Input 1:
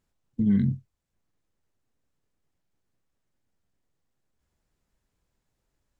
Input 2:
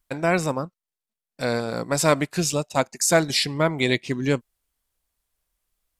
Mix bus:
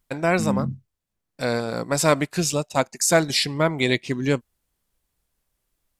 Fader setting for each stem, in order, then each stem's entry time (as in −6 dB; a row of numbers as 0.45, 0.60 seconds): −3.0, +0.5 decibels; 0.00, 0.00 seconds